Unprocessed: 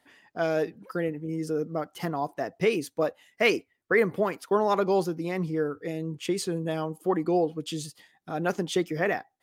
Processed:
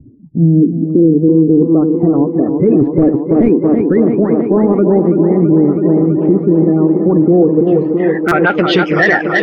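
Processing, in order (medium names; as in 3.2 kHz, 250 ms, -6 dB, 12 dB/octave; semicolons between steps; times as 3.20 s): coarse spectral quantiser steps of 30 dB; dynamic bell 1.1 kHz, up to +4 dB, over -41 dBFS, Q 0.94; 2.81–3.49 s: waveshaping leveller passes 5; in parallel at +3 dB: upward compressor, threshold -24 dBFS; on the sum: low-pass sweep 110 Hz -> 2.2 kHz, 0.06–2.32 s; saturation -2.5 dBFS, distortion -10 dB; low-pass sweep 310 Hz -> 6.8 kHz, 7.30–8.93 s; on a send: tape echo 329 ms, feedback 86%, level -7.5 dB, low-pass 4.5 kHz; on the sum: buffer glitch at 8.28 s, samples 256, times 5; loudness maximiser +9.5 dB; trim -1 dB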